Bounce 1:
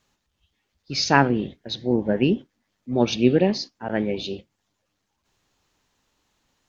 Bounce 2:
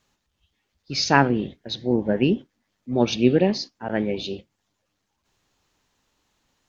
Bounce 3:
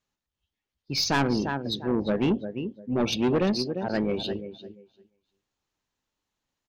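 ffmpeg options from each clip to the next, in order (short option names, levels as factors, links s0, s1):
-af anull
-af "aecho=1:1:347|694|1041:0.251|0.0703|0.0197,afftdn=nr=14:nf=-38,aeval=exprs='(tanh(7.94*val(0)+0.1)-tanh(0.1))/7.94':c=same"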